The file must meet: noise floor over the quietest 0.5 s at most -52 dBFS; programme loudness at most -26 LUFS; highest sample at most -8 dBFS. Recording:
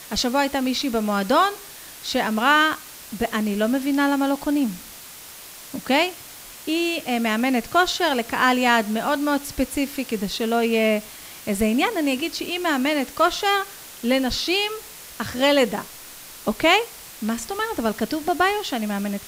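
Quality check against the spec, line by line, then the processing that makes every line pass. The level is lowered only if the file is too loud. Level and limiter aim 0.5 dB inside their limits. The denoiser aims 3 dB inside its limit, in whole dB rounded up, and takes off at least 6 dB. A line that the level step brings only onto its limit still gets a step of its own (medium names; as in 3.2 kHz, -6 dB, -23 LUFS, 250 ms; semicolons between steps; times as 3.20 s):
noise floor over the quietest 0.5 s -41 dBFS: fail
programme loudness -22.0 LUFS: fail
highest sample -4.5 dBFS: fail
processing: noise reduction 10 dB, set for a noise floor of -41 dBFS; trim -4.5 dB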